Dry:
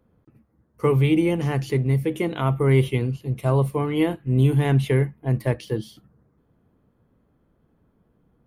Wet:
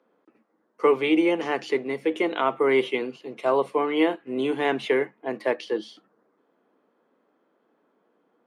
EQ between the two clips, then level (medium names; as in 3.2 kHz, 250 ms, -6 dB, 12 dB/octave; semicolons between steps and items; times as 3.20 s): Bessel high-pass 430 Hz, order 6; distance through air 110 m; +5.0 dB